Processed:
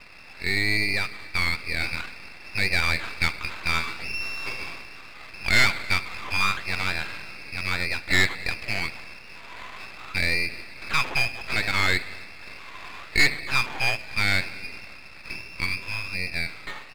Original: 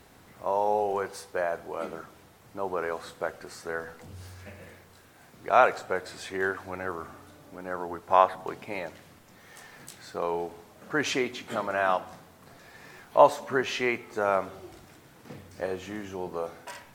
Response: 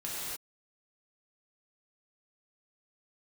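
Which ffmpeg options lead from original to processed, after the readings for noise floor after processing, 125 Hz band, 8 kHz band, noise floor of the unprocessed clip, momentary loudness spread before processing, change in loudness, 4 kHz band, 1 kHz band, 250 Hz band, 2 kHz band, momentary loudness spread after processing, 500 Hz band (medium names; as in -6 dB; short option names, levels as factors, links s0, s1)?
-43 dBFS, +11.5 dB, +7.5 dB, -55 dBFS, 23 LU, +4.0 dB, +13.5 dB, -6.0 dB, 0.0 dB, +11.5 dB, 19 LU, -11.5 dB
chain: -filter_complex "[0:a]asplit=2[s0][s1];[s1]acompressor=threshold=0.0141:ratio=6,volume=1.41[s2];[s0][s2]amix=inputs=2:normalize=0,lowpass=f=2400:t=q:w=0.5098,lowpass=f=2400:t=q:w=0.6013,lowpass=f=2400:t=q:w=0.9,lowpass=f=2400:t=q:w=2.563,afreqshift=-2800,dynaudnorm=f=300:g=17:m=3.76,aresample=11025,asoftclip=type=tanh:threshold=0.224,aresample=44100,highpass=f=730:p=1,aeval=exprs='max(val(0),0)':c=same,aecho=1:1:275|550|825:0.0631|0.0322|0.0164,volume=1.78"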